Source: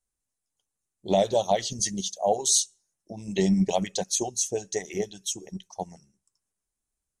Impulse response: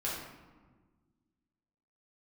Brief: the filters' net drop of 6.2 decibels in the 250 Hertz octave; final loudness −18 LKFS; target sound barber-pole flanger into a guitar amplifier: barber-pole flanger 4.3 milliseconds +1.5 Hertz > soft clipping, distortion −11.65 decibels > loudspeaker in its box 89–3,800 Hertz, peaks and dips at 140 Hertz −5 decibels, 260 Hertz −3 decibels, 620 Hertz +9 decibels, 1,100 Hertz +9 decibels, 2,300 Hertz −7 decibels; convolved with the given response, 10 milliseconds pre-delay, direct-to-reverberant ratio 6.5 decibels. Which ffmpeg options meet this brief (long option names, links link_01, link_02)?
-filter_complex "[0:a]equalizer=frequency=250:width_type=o:gain=-8,asplit=2[link_01][link_02];[1:a]atrim=start_sample=2205,adelay=10[link_03];[link_02][link_03]afir=irnorm=-1:irlink=0,volume=-11dB[link_04];[link_01][link_04]amix=inputs=2:normalize=0,asplit=2[link_05][link_06];[link_06]adelay=4.3,afreqshift=1.5[link_07];[link_05][link_07]amix=inputs=2:normalize=1,asoftclip=threshold=-23.5dB,highpass=89,equalizer=frequency=140:width_type=q:width=4:gain=-5,equalizer=frequency=260:width_type=q:width=4:gain=-3,equalizer=frequency=620:width_type=q:width=4:gain=9,equalizer=frequency=1100:width_type=q:width=4:gain=9,equalizer=frequency=2300:width_type=q:width=4:gain=-7,lowpass=frequency=3800:width=0.5412,lowpass=frequency=3800:width=1.3066,volume=12dB"